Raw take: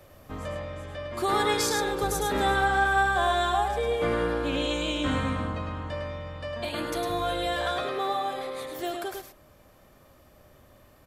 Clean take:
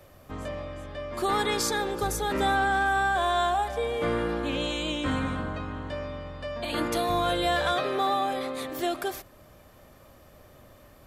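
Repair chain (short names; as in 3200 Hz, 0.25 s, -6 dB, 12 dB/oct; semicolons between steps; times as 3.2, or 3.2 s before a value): inverse comb 0.105 s -5 dB; gain correction +4 dB, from 6.69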